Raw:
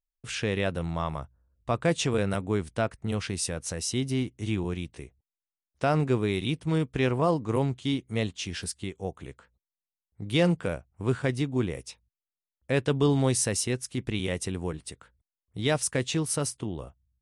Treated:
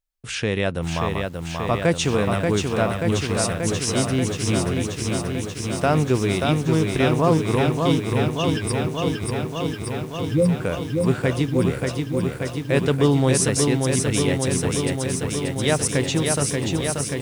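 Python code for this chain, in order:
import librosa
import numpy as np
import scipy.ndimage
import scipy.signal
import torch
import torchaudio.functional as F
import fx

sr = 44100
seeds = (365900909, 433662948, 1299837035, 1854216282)

y = fx.spec_expand(x, sr, power=3.5, at=(7.99, 10.61))
y = fx.echo_crushed(y, sr, ms=583, feedback_pct=80, bits=9, wet_db=-4.0)
y = y * 10.0 ** (5.0 / 20.0)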